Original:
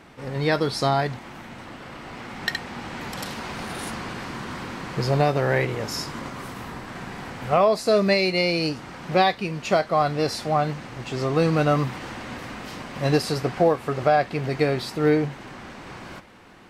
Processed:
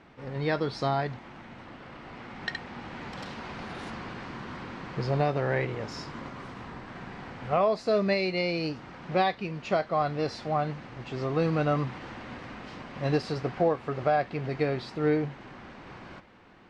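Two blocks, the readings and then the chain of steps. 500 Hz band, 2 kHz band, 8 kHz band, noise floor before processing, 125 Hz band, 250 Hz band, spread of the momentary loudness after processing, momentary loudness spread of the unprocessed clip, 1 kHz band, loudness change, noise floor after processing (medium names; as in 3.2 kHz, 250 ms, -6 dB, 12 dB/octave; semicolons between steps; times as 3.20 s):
-6.0 dB, -7.0 dB, under -15 dB, -42 dBFS, -5.5 dB, -5.5 dB, 17 LU, 17 LU, -6.0 dB, -6.0 dB, -48 dBFS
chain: distance through air 130 m; trim -5.5 dB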